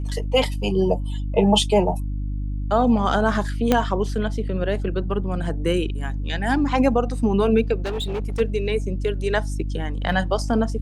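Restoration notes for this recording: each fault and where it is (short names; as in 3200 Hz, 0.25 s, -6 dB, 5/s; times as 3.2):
hum 50 Hz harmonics 6 -26 dBFS
3.72 pop -4 dBFS
7.82–8.41 clipped -22.5 dBFS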